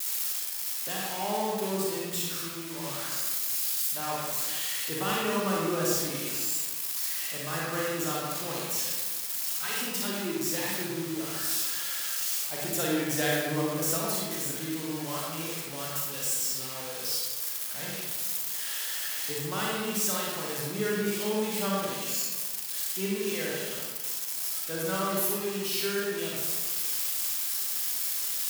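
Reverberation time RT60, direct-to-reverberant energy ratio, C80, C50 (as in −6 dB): 1.4 s, −5.0 dB, 0.5 dB, −2.5 dB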